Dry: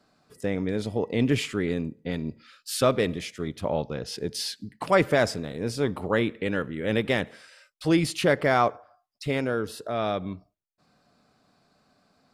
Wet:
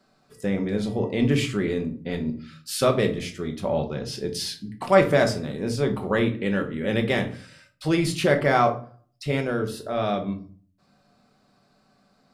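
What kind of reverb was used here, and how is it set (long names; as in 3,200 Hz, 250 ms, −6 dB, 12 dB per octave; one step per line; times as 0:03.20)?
rectangular room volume 320 cubic metres, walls furnished, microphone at 1.1 metres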